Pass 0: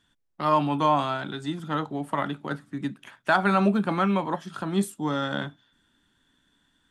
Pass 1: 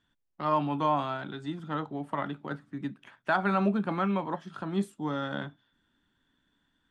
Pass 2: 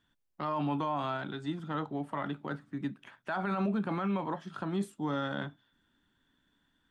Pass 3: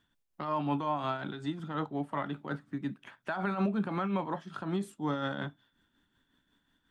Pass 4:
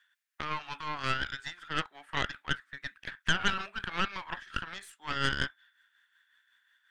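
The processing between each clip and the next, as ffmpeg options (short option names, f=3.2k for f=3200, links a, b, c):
-af "aemphasis=mode=reproduction:type=50fm,volume=-5dB"
-af "alimiter=limit=-24dB:level=0:latency=1:release=26"
-af "tremolo=f=5.5:d=0.49,volume=2.5dB"
-af "highpass=f=1.7k:t=q:w=3.4,aeval=exprs='0.106*(cos(1*acos(clip(val(0)/0.106,-1,1)))-cos(1*PI/2))+0.0473*(cos(4*acos(clip(val(0)/0.106,-1,1)))-cos(4*PI/2))':c=same,volume=1.5dB"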